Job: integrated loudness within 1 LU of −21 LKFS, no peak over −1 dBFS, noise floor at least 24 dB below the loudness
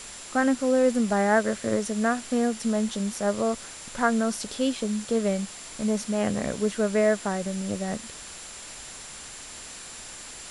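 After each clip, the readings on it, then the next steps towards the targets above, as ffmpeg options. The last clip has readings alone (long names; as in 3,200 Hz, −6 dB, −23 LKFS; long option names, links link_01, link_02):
interfering tone 7,300 Hz; level of the tone −45 dBFS; background noise floor −42 dBFS; target noise floor −50 dBFS; integrated loudness −26.0 LKFS; sample peak −9.5 dBFS; target loudness −21.0 LKFS
→ -af "bandreject=frequency=7300:width=30"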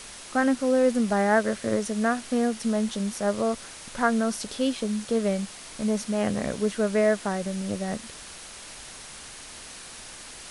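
interfering tone none found; background noise floor −43 dBFS; target noise floor −50 dBFS
→ -af "afftdn=noise_reduction=7:noise_floor=-43"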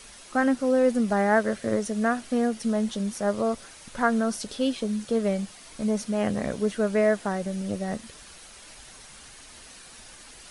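background noise floor −48 dBFS; target noise floor −50 dBFS
→ -af "afftdn=noise_reduction=6:noise_floor=-48"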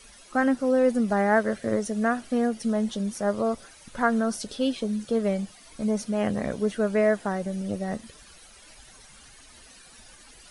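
background noise floor −51 dBFS; integrated loudness −26.0 LKFS; sample peak −10.0 dBFS; target loudness −21.0 LKFS
→ -af "volume=5dB"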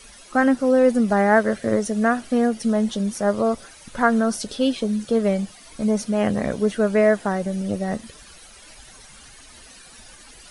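integrated loudness −21.0 LKFS; sample peak −5.0 dBFS; background noise floor −46 dBFS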